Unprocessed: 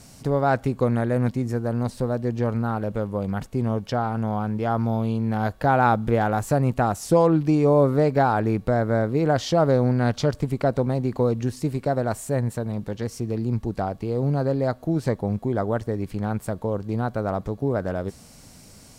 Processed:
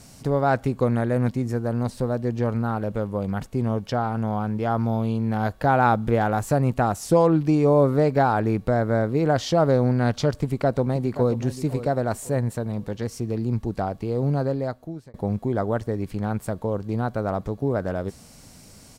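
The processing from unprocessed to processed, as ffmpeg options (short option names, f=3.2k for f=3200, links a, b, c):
-filter_complex "[0:a]asplit=2[a][b];[b]afade=t=in:st=10.38:d=0.01,afade=t=out:st=11.32:d=0.01,aecho=0:1:530|1060|1590:0.237137|0.0711412|0.0213424[c];[a][c]amix=inputs=2:normalize=0,asplit=2[d][e];[d]atrim=end=15.14,asetpts=PTS-STARTPTS,afade=t=out:st=14.37:d=0.77[f];[e]atrim=start=15.14,asetpts=PTS-STARTPTS,afade=t=in:d=0.004:c=hsin[g];[f][g]concat=n=2:v=0:a=1"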